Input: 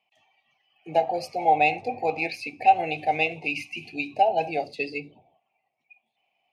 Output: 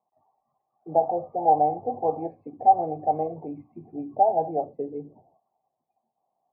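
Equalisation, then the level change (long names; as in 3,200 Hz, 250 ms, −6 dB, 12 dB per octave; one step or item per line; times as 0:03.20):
elliptic low-pass filter 1,100 Hz, stop band 60 dB
+1.5 dB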